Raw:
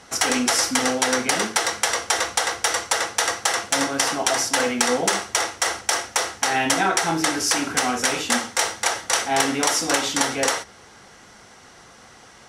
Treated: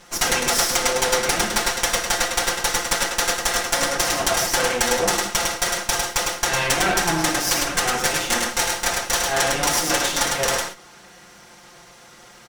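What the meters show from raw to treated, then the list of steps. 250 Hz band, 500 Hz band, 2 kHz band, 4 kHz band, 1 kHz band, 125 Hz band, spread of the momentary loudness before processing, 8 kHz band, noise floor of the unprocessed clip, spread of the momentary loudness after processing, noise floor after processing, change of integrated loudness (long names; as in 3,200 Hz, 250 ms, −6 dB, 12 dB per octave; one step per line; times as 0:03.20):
−3.5 dB, +1.5 dB, +1.0 dB, +1.5 dB, 0.0 dB, +5.0 dB, 4 LU, +1.0 dB, −48 dBFS, 3 LU, −47 dBFS, +1.0 dB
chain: lower of the sound and its delayed copy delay 5.7 ms
on a send: single-tap delay 104 ms −3.5 dB
on the sum: level +1 dB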